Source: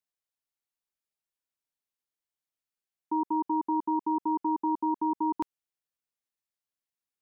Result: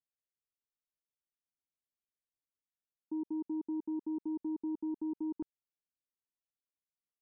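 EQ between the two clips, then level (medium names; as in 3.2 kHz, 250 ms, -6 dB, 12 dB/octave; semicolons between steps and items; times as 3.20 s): boxcar filter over 44 samples; -4.0 dB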